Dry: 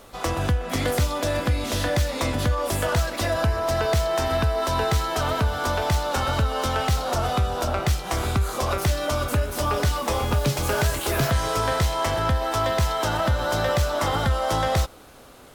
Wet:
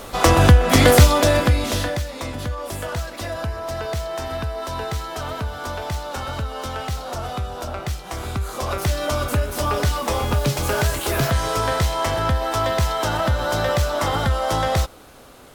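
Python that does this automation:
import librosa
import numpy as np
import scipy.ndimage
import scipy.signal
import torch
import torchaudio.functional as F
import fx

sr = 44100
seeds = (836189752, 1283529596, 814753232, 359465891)

y = fx.gain(x, sr, db=fx.line((1.01, 11.5), (1.79, 2.5), (2.04, -4.5), (8.17, -4.5), (9.03, 2.0)))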